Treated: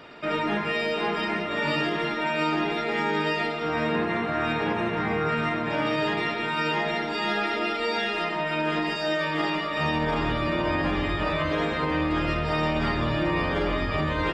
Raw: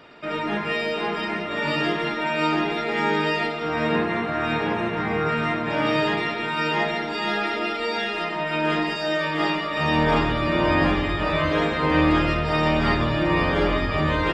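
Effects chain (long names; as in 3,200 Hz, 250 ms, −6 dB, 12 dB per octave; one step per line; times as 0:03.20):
in parallel at 0 dB: speech leveller
on the sum: brickwall limiter −8.5 dBFS, peak gain reduction 6 dB
level −8 dB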